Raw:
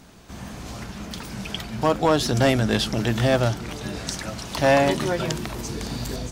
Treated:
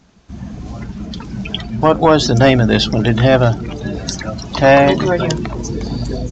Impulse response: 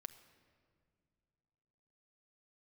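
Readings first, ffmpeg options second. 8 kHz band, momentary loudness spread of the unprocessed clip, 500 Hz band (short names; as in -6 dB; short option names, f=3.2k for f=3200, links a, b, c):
+3.0 dB, 16 LU, +9.0 dB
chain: -af "acontrast=38,afftdn=nr=14:nf=-27,aresample=16000,aresample=44100,volume=4dB"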